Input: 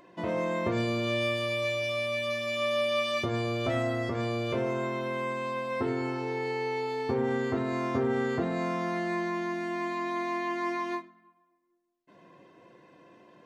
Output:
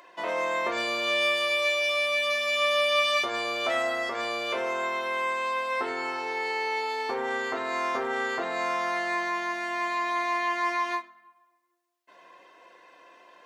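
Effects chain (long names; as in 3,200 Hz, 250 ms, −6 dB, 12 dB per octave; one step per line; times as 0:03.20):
high-pass filter 770 Hz 12 dB per octave
level +7.5 dB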